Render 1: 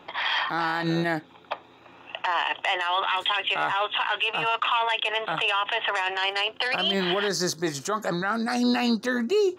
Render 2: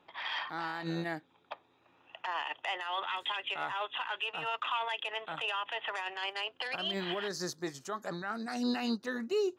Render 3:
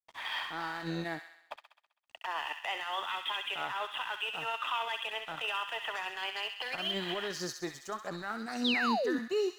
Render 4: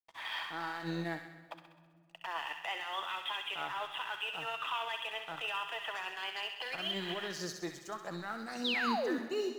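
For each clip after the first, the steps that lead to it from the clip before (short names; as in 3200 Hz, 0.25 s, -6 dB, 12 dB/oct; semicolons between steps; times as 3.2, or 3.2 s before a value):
upward expander 1.5:1, over -36 dBFS; gain -8 dB
crossover distortion -54.5 dBFS; thin delay 65 ms, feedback 58%, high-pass 1400 Hz, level -6 dB; painted sound fall, 8.64–9.19, 230–4100 Hz -31 dBFS
companded quantiser 8-bit; shoebox room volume 3200 m³, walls mixed, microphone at 0.69 m; gain -3 dB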